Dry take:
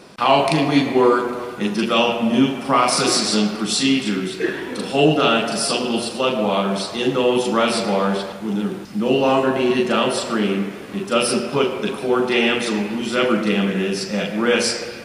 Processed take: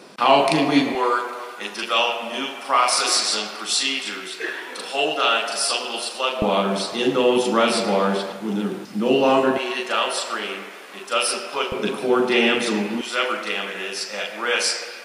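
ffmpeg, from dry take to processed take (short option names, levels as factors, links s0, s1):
-af "asetnsamples=n=441:p=0,asendcmd='0.95 highpass f 710;6.42 highpass f 190;9.58 highpass f 710;11.72 highpass f 180;13.01 highpass f 710',highpass=210"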